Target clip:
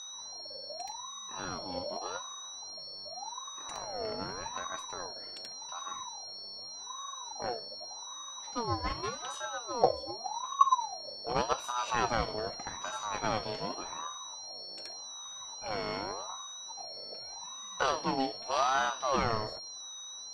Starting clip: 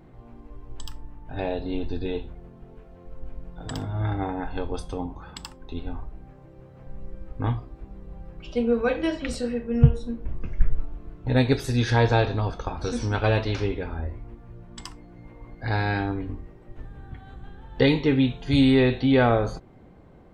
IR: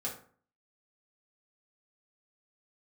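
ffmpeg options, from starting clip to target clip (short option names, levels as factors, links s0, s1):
-af "aeval=exprs='val(0)+0.0316*sin(2*PI*4900*n/s)':c=same,aeval=exprs='0.794*(cos(1*acos(clip(val(0)/0.794,-1,1)))-cos(1*PI/2))+0.112*(cos(4*acos(clip(val(0)/0.794,-1,1)))-cos(4*PI/2))+0.0112*(cos(7*acos(clip(val(0)/0.794,-1,1)))-cos(7*PI/2))':c=same,aeval=exprs='val(0)*sin(2*PI*820*n/s+820*0.35/0.85*sin(2*PI*0.85*n/s))':c=same,volume=0.398"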